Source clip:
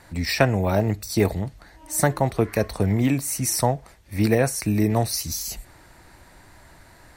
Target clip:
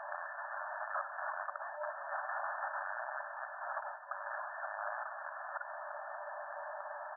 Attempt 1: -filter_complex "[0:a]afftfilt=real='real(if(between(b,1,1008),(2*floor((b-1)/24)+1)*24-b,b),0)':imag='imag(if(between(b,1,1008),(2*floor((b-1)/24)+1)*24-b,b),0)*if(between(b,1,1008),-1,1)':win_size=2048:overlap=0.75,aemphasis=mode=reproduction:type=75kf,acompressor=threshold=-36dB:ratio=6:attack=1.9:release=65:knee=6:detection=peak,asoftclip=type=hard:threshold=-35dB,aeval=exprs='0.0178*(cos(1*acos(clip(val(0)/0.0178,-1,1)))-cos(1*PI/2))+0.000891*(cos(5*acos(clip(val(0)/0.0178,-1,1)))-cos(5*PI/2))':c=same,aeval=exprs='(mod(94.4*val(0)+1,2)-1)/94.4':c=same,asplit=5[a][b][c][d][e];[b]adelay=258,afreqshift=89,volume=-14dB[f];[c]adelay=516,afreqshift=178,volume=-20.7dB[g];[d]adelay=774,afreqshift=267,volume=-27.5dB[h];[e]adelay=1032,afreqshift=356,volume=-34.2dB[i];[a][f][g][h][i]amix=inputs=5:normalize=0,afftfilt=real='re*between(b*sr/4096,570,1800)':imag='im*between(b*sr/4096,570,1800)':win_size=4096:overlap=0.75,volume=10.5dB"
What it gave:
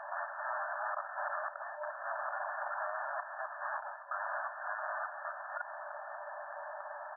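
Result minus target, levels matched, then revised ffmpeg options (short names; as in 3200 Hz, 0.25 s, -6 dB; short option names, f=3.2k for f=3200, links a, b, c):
compressor: peak gain reduction +5.5 dB
-filter_complex "[0:a]afftfilt=real='real(if(between(b,1,1008),(2*floor((b-1)/24)+1)*24-b,b),0)':imag='imag(if(between(b,1,1008),(2*floor((b-1)/24)+1)*24-b,b),0)*if(between(b,1,1008),-1,1)':win_size=2048:overlap=0.75,aemphasis=mode=reproduction:type=75kf,acompressor=threshold=-29.5dB:ratio=6:attack=1.9:release=65:knee=6:detection=peak,asoftclip=type=hard:threshold=-35dB,aeval=exprs='0.0178*(cos(1*acos(clip(val(0)/0.0178,-1,1)))-cos(1*PI/2))+0.000891*(cos(5*acos(clip(val(0)/0.0178,-1,1)))-cos(5*PI/2))':c=same,aeval=exprs='(mod(94.4*val(0)+1,2)-1)/94.4':c=same,asplit=5[a][b][c][d][e];[b]adelay=258,afreqshift=89,volume=-14dB[f];[c]adelay=516,afreqshift=178,volume=-20.7dB[g];[d]adelay=774,afreqshift=267,volume=-27.5dB[h];[e]adelay=1032,afreqshift=356,volume=-34.2dB[i];[a][f][g][h][i]amix=inputs=5:normalize=0,afftfilt=real='re*between(b*sr/4096,570,1800)':imag='im*between(b*sr/4096,570,1800)':win_size=4096:overlap=0.75,volume=10.5dB"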